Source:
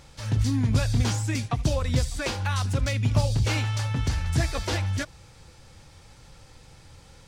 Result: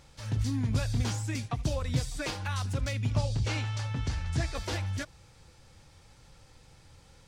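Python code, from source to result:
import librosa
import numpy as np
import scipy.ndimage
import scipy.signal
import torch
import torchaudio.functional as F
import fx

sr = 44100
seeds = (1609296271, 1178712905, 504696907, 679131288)

y = fx.comb(x, sr, ms=6.6, depth=0.58, at=(1.93, 2.48))
y = fx.lowpass(y, sr, hz=8200.0, slope=12, at=(3.11, 4.55))
y = F.gain(torch.from_numpy(y), -6.0).numpy()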